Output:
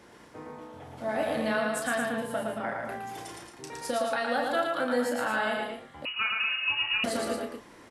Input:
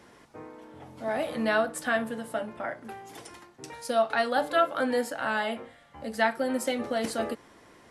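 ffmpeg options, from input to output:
-filter_complex "[0:a]acompressor=threshold=0.0447:ratio=6,asplit=2[s0][s1];[s1]adelay=33,volume=0.473[s2];[s0][s2]amix=inputs=2:normalize=0,aecho=1:1:113.7|224.5:0.708|0.447,asettb=1/sr,asplit=3[s3][s4][s5];[s3]atrim=end=6.054[s6];[s4]atrim=start=6.05:end=7.04,asetpts=PTS-STARTPTS,afade=t=in:d=0.004:c=qsin,afade=t=out:st=0.986:d=0.004:c=qsin,lowpass=f=2600:t=q:w=0.5098,lowpass=f=2600:t=q:w=0.6013,lowpass=f=2600:t=q:w=0.9,lowpass=f=2600:t=q:w=2.563,afreqshift=-3100[s7];[s5]atrim=start=7.036[s8];[s6][s7]acrossfade=d=0.004:c1=hsin:c2=qsin[s9];[s9][s8]acrossfade=d=0.004:c1=qsin:c2=hsin"

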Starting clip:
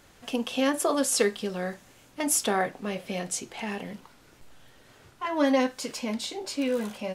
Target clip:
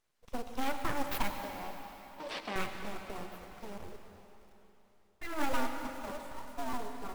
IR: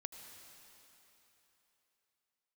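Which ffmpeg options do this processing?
-filter_complex "[0:a]afwtdn=0.0282,asplit=3[s0][s1][s2];[s0]afade=t=out:st=5.52:d=0.02[s3];[s1]afreqshift=73,afade=t=in:st=5.52:d=0.02,afade=t=out:st=6.72:d=0.02[s4];[s2]afade=t=in:st=6.72:d=0.02[s5];[s3][s4][s5]amix=inputs=3:normalize=0,aeval=exprs='abs(val(0))':c=same,acrusher=bits=4:mode=log:mix=0:aa=0.000001,asettb=1/sr,asplit=3[s6][s7][s8];[s6]atrim=end=1.304[s9];[s7]atrim=start=1.3:end=2.56,asetpts=PTS-STARTPTS,afade=t=in:d=0.004:c=qsin,afade=t=out:st=1.256:d=0.004:c=qsin,highpass=260,equalizer=f=390:t=q:w=4:g=-4,equalizer=f=1400:t=q:w=4:g=-7,equalizer=f=6700:t=q:w=4:g=-10,lowpass=f=7200:w=0.5412,lowpass=f=7200:w=1.3066[s10];[s8]atrim=start=2.556[s11];[s9][s10]acrossfade=d=0.004:c1=hsin:c2=qsin[s12];[s12][s11]acrossfade=d=0.004:c1=qsin:c2=hsin[s13];[1:a]atrim=start_sample=2205[s14];[s13][s14]afir=irnorm=-1:irlink=0,volume=0.794"

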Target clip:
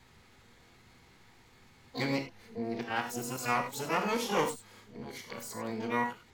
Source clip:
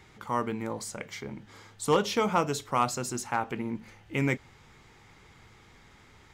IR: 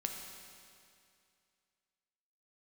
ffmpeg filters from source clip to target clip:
-filter_complex "[0:a]areverse[s0];[1:a]atrim=start_sample=2205,atrim=end_sample=6174,asetrate=57330,aresample=44100[s1];[s0][s1]afir=irnorm=-1:irlink=0,asplit=2[s2][s3];[s3]asetrate=88200,aresample=44100,atempo=0.5,volume=0.631[s4];[s2][s4]amix=inputs=2:normalize=0,volume=0.708"

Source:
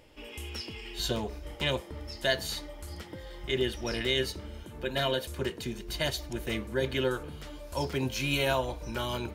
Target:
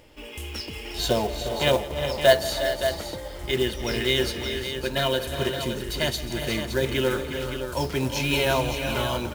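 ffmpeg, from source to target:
-filter_complex "[0:a]asettb=1/sr,asplit=3[s0][s1][s2];[s0]atrim=end=0.854[s3];[s1]atrim=start=0.85:end=3.28,asetpts=PTS-STARTPTS,afade=t=in:d=0.004:c=qsin,afade=t=out:st=2.426:d=0.004:c=qsin,equalizer=f=660:t=o:w=0.91:g=9.5[s4];[s2]atrim=start=3.276[s5];[s3][s4]acrossfade=d=0.004:c1=hsin:c2=qsin[s6];[s6][s5]acrossfade=d=0.004:c1=qsin:c2=hsin,acrusher=bits=4:mode=log:mix=0:aa=0.000001,aecho=1:1:168|302|358|365|406|567:0.126|0.141|0.282|0.15|0.237|0.376,volume=1.68"

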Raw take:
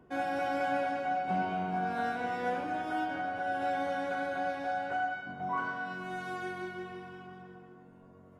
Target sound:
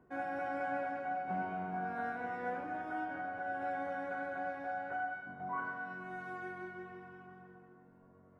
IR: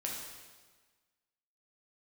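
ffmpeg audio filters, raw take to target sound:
-af "highshelf=f=2500:t=q:w=1.5:g=-9,volume=0.473"

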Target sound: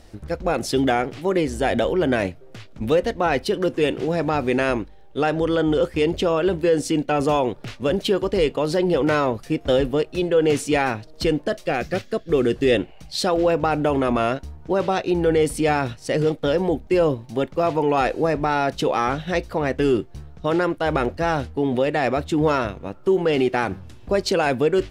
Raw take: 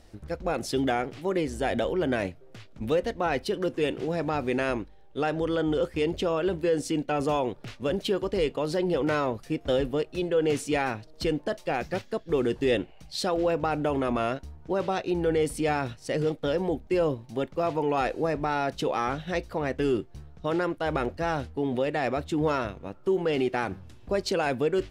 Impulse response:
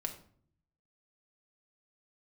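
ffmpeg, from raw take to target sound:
-filter_complex "[0:a]asettb=1/sr,asplit=3[s0][s1][s2];[s0]atrim=end=11.424[s3];[s1]atrim=start=11.42:end=12.75,asetpts=PTS-STARTPTS,afade=t=in:d=0.004:c=qsin,afade=t=out:st=1.326:d=0.004:c=qsin,equalizer=f=910:w=6.8:g=-13.5[s4];[s2]atrim=start=12.746[s5];[s3][s4]acrossfade=d=0.004:c1=hsin:c2=qsin[s6];[s6][s5]acrossfade=d=0.004:c1=qsin:c2=hsin,volume=2.11"

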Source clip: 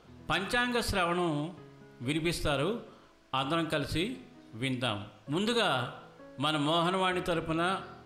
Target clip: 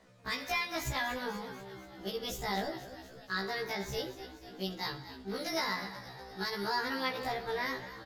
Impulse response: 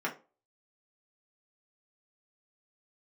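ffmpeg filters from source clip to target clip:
-filter_complex "[0:a]bandreject=f=60:t=h:w=6,bandreject=f=120:t=h:w=6,bandreject=f=180:t=h:w=6,bandreject=f=240:t=h:w=6,bandreject=f=300:t=h:w=6,bandreject=f=360:t=h:w=6,asetrate=62367,aresample=44100,atempo=0.707107,asplit=2[s0][s1];[s1]asplit=7[s2][s3][s4][s5][s6][s7][s8];[s2]adelay=243,afreqshift=-55,volume=0.224[s9];[s3]adelay=486,afreqshift=-110,volume=0.143[s10];[s4]adelay=729,afreqshift=-165,volume=0.0912[s11];[s5]adelay=972,afreqshift=-220,volume=0.0589[s12];[s6]adelay=1215,afreqshift=-275,volume=0.0376[s13];[s7]adelay=1458,afreqshift=-330,volume=0.024[s14];[s8]adelay=1701,afreqshift=-385,volume=0.0153[s15];[s9][s10][s11][s12][s13][s14][s15]amix=inputs=7:normalize=0[s16];[s0][s16]amix=inputs=2:normalize=0,afftfilt=real='re*1.73*eq(mod(b,3),0)':imag='im*1.73*eq(mod(b,3),0)':win_size=2048:overlap=0.75,volume=0.75"

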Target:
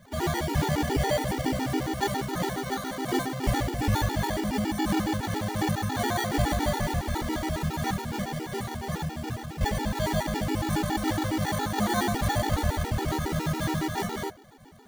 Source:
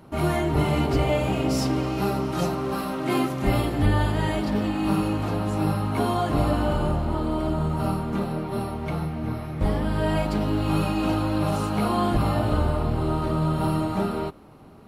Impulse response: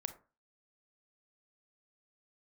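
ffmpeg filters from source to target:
-filter_complex "[0:a]equalizer=f=840:w=7.7:g=10.5,acrusher=samples=17:mix=1:aa=0.000001,asplit=2[s0][s1];[s1]asetrate=55563,aresample=44100,atempo=0.793701,volume=0.2[s2];[s0][s2]amix=inputs=2:normalize=0,asplit=2[s3][s4];[1:a]atrim=start_sample=2205[s5];[s4][s5]afir=irnorm=-1:irlink=0,volume=0.794[s6];[s3][s6]amix=inputs=2:normalize=0,afftfilt=real='re*gt(sin(2*PI*7.2*pts/sr)*(1-2*mod(floor(b*sr/1024/250),2)),0)':imag='im*gt(sin(2*PI*7.2*pts/sr)*(1-2*mod(floor(b*sr/1024/250),2)),0)':win_size=1024:overlap=0.75,volume=0.501"

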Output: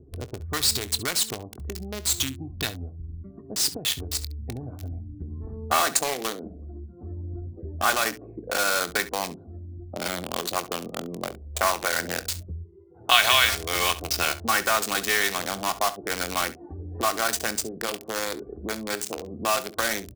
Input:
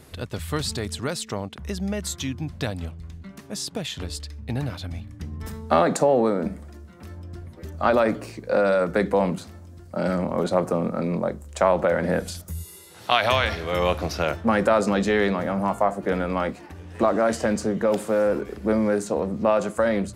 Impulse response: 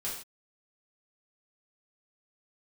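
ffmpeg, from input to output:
-filter_complex "[0:a]afftdn=nr=21:nf=-44,aecho=1:1:2.7:0.45,acrossover=split=930[s0][s1];[s0]acompressor=threshold=0.0224:ratio=20[s2];[s1]acrusher=bits=4:mix=0:aa=0.000001[s3];[s2][s3]amix=inputs=2:normalize=0,aecho=1:1:23|68:0.178|0.15,adynamicequalizer=threshold=0.01:dfrequency=2500:dqfactor=0.7:tfrequency=2500:tqfactor=0.7:attack=5:release=100:ratio=0.375:range=3:mode=boostabove:tftype=highshelf,volume=1.19"

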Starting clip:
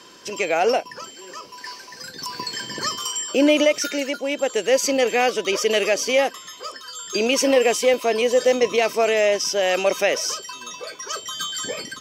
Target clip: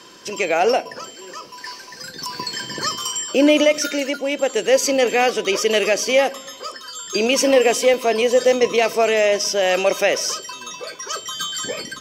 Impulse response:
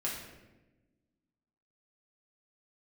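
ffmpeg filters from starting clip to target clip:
-filter_complex "[0:a]asplit=2[s0][s1];[1:a]atrim=start_sample=2205,lowshelf=f=320:g=9[s2];[s1][s2]afir=irnorm=-1:irlink=0,volume=0.0841[s3];[s0][s3]amix=inputs=2:normalize=0,volume=1.19"

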